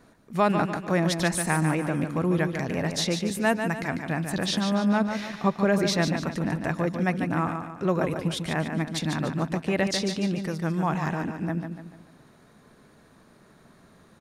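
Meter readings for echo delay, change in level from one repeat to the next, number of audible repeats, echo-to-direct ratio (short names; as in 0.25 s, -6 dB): 0.146 s, -7.5 dB, 4, -6.0 dB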